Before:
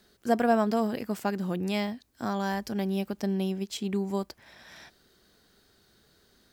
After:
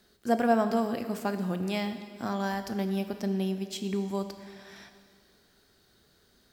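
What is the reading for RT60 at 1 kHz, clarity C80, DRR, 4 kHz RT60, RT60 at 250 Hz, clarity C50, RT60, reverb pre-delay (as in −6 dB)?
2.0 s, 10.5 dB, 8.0 dB, 2.0 s, 2.0 s, 9.5 dB, 2.0 s, 7 ms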